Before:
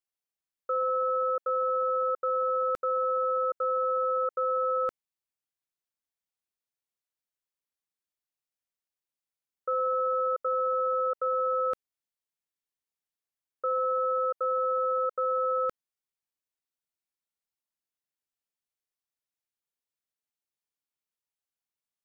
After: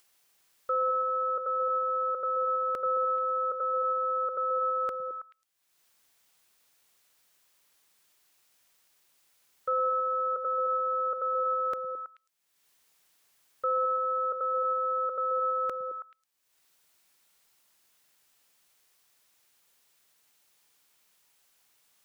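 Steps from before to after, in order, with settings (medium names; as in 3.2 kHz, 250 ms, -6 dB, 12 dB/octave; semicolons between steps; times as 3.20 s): bass shelf 470 Hz -8 dB; upward compressor, threshold -52 dBFS; repeats whose band climbs or falls 108 ms, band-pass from 150 Hz, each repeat 1.4 oct, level -3.5 dB; trim +2.5 dB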